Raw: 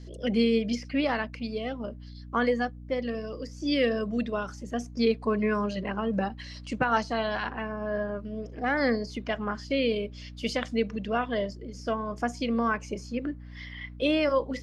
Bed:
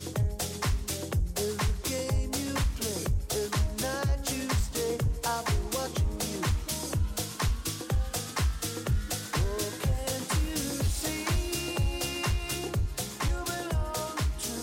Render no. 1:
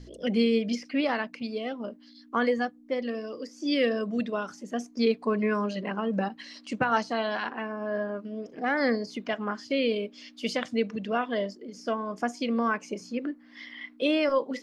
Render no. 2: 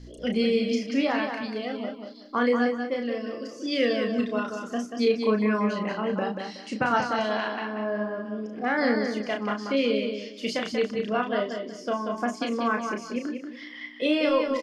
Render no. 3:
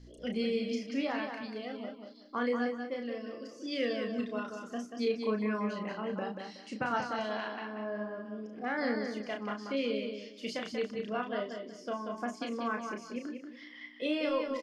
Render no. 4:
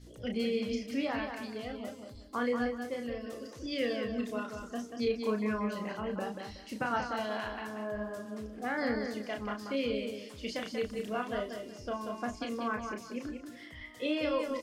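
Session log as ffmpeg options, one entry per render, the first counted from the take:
-af "bandreject=f=60:t=h:w=4,bandreject=f=120:t=h:w=4,bandreject=f=180:t=h:w=4"
-filter_complex "[0:a]asplit=2[s0][s1];[s1]adelay=33,volume=0.562[s2];[s0][s2]amix=inputs=2:normalize=0,aecho=1:1:186|372|558:0.501|0.135|0.0365"
-af "volume=0.376"
-filter_complex "[1:a]volume=0.0596[s0];[0:a][s0]amix=inputs=2:normalize=0"

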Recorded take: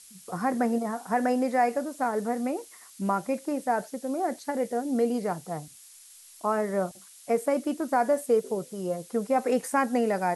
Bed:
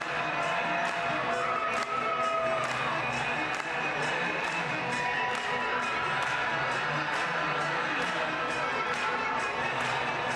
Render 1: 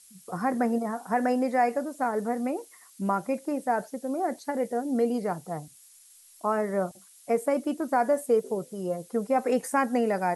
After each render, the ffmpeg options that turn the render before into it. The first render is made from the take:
-af "afftdn=nr=6:nf=-51"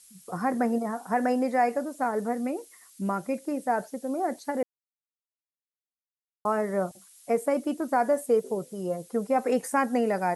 -filter_complex "[0:a]asettb=1/sr,asplit=3[s0][s1][s2];[s0]atrim=end=2.334[s3];[s1]atrim=start=2.33:end=3.65,asetpts=PTS-STARTPTS,afade=t=in:d=0.004:c=qsin,afade=t=out:st=1.316:d=0.004:c=qsin,equalizer=f=890:w=1.5:g=-5[s4];[s2]atrim=start=3.646[s5];[s3][s4]acrossfade=d=0.004:c1=hsin:c2=qsin[s6];[s6][s5]acrossfade=d=0.004:c1=qsin:c2=hsin,asplit=3[s7][s8][s9];[s7]atrim=end=4.63,asetpts=PTS-STARTPTS,afade=t=out:st=4.626:d=0.004:c=hsin[s10];[s8]atrim=start=4.63:end=6.45,asetpts=PTS-STARTPTS,volume=0[s11];[s9]atrim=start=6.45,asetpts=PTS-STARTPTS,afade=t=in:d=0.004:c=hsin[s12];[s10][s11][s12]concat=n=3:v=0:a=1"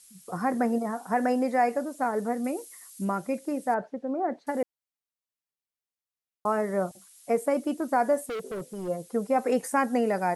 -filter_complex "[0:a]asettb=1/sr,asplit=3[s0][s1][s2];[s0]atrim=end=2.444[s3];[s1]atrim=start=2.44:end=3.05,asetpts=PTS-STARTPTS,afade=t=in:d=0.004:c=qsin,afade=t=out:st=0.606:d=0.004:c=qsin,highshelf=f=6000:g=8.5[s4];[s2]atrim=start=3.046[s5];[s3][s4]acrossfade=d=0.004:c1=hsin:c2=qsin[s6];[s6][s5]acrossfade=d=0.004:c1=qsin:c2=hsin,asettb=1/sr,asplit=3[s7][s8][s9];[s7]atrim=end=3.744[s10];[s8]atrim=start=3.74:end=4.47,asetpts=PTS-STARTPTS,afade=t=in:d=0.004:c=qsin,afade=t=out:st=0.726:d=0.004:c=qsin,lowpass=2000[s11];[s9]atrim=start=4.466[s12];[s10][s11]acrossfade=d=0.004:c1=hsin:c2=qsin[s13];[s13][s12]acrossfade=d=0.004:c1=qsin:c2=hsin,asplit=3[s14][s15][s16];[s14]afade=t=out:st=8.21:d=0.02[s17];[s15]asoftclip=type=hard:threshold=0.0282,afade=t=in:st=8.21:d=0.02,afade=t=out:st=8.87:d=0.02[s18];[s16]afade=t=in:st=8.87:d=0.02[s19];[s17][s18][s19]amix=inputs=3:normalize=0"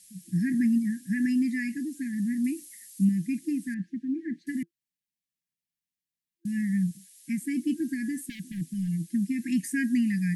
-af "afftfilt=real='re*(1-between(b*sr/4096,340,1600))':imag='im*(1-between(b*sr/4096,340,1600))':win_size=4096:overlap=0.75,equalizer=f=170:w=1.9:g=11.5"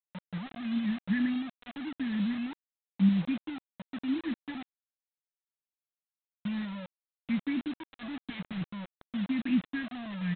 -af "tremolo=f=0.95:d=0.9,aresample=8000,acrusher=bits=6:mix=0:aa=0.000001,aresample=44100"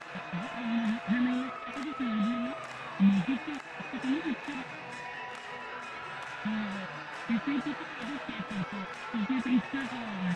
-filter_complex "[1:a]volume=0.282[s0];[0:a][s0]amix=inputs=2:normalize=0"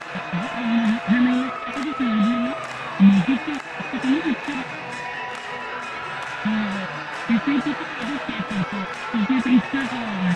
-af "volume=3.35"

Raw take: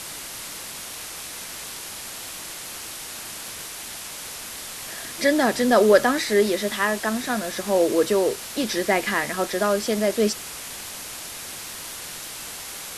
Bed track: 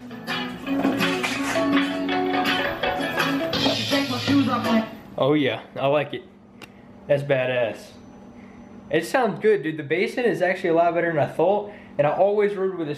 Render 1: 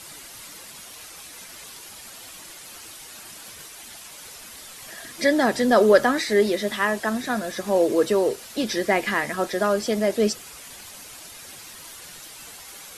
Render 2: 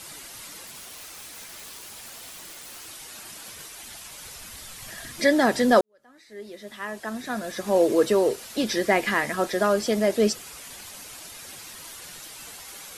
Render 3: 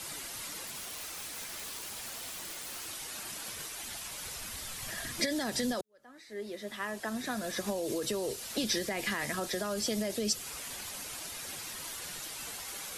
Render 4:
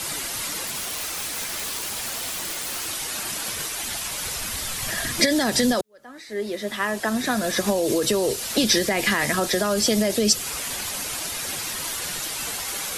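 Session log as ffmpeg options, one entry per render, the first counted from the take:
-af "afftdn=nr=9:nf=-36"
-filter_complex "[0:a]asettb=1/sr,asplit=3[s0][s1][s2];[s0]atrim=end=0.664[s3];[s1]atrim=start=0.66:end=2.88,asetpts=PTS-STARTPTS,afade=t=in:d=0.004:c=qsin,afade=t=out:st=2.216:d=0.004:c=qsin,aeval=exprs='(mod(50.1*val(0)+1,2)-1)/50.1':c=same[s4];[s2]atrim=start=2.876[s5];[s3][s4]acrossfade=d=0.004:c1=hsin:c2=qsin[s6];[s6][s5]acrossfade=d=0.004:c1=qsin:c2=hsin,asettb=1/sr,asplit=3[s7][s8][s9];[s7]atrim=end=3.604[s10];[s8]atrim=start=3.6:end=5.2,asetpts=PTS-STARTPTS,afade=t=in:d=0.004:c=qsin,afade=t=out:st=1.596:d=0.004:c=qsin,asubboost=boost=7.5:cutoff=170[s11];[s9]atrim=start=5.196[s12];[s10][s11]acrossfade=d=0.004:c1=hsin:c2=qsin[s13];[s13][s12]acrossfade=d=0.004:c1=qsin:c2=hsin,asplit=2[s14][s15];[s14]atrim=end=5.81,asetpts=PTS-STARTPTS,afade=t=out:st=5.806:d=0.004:c=hsin[s16];[s15]atrim=start=5.81,asetpts=PTS-STARTPTS,afade=t=in:d=1.98:c=qua[s17];[s16][s17]concat=n=2:v=0:a=1"
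-filter_complex "[0:a]alimiter=limit=0.168:level=0:latency=1:release=33,acrossover=split=150|3000[s0][s1][s2];[s1]acompressor=threshold=0.0224:ratio=6[s3];[s0][s3][s2]amix=inputs=3:normalize=0"
-af "volume=3.98"

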